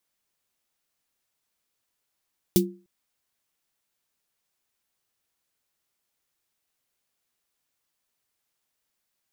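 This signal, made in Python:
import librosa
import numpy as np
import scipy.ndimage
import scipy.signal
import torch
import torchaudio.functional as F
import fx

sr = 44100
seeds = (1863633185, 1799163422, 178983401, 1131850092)

y = fx.drum_snare(sr, seeds[0], length_s=0.3, hz=190.0, second_hz=350.0, noise_db=-4.0, noise_from_hz=3100.0, decay_s=0.34, noise_decay_s=0.11)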